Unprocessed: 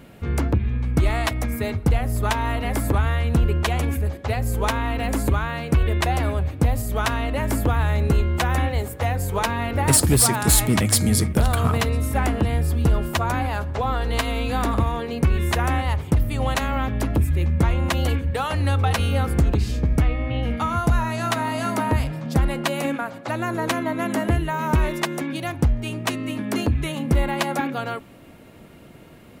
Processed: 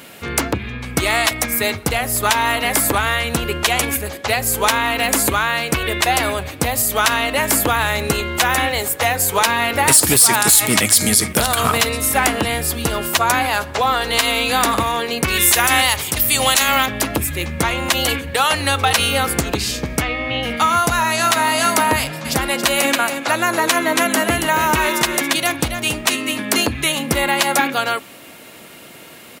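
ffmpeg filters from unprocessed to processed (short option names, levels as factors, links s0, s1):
-filter_complex "[0:a]asettb=1/sr,asplit=3[s0][s1][s2];[s0]atrim=end=15.284[s3];[s1]atrim=start=15.28:end=16.86,asetpts=PTS-STARTPTS,afade=t=in:d=0.004:c=qsin,afade=t=out:st=1.576:d=0.004:c=qsin,highshelf=f=3000:g=12[s4];[s2]atrim=start=16.856[s5];[s3][s4]acrossfade=d=0.004:c1=hsin:c2=qsin[s6];[s6][s5]acrossfade=d=0.004:c1=qsin:c2=hsin,asplit=3[s7][s8][s9];[s7]afade=t=out:st=22.24:d=0.02[s10];[s8]aecho=1:1:278:0.398,afade=t=in:st=22.24:d=0.02,afade=t=out:st=26.32:d=0.02[s11];[s9]afade=t=in:st=26.32:d=0.02[s12];[s10][s11][s12]amix=inputs=3:normalize=0,highpass=f=450:p=1,highshelf=f=2100:g=11,alimiter=level_in=2.66:limit=0.891:release=50:level=0:latency=1,volume=0.891"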